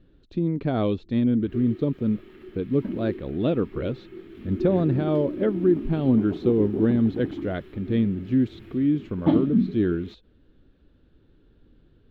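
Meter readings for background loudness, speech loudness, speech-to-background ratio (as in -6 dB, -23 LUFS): -30.5 LUFS, -25.0 LUFS, 5.5 dB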